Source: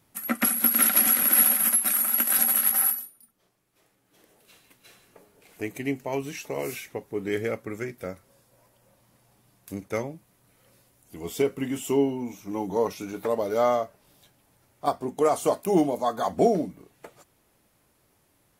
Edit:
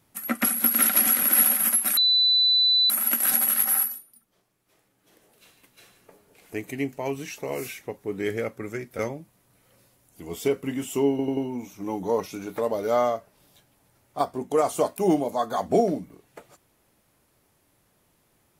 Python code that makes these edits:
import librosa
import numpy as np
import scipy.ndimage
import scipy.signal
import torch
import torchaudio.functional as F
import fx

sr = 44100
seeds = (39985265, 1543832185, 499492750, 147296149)

y = fx.edit(x, sr, fx.insert_tone(at_s=1.97, length_s=0.93, hz=3990.0, db=-16.5),
    fx.cut(start_s=8.06, length_s=1.87),
    fx.stutter(start_s=12.04, slice_s=0.09, count=4), tone=tone)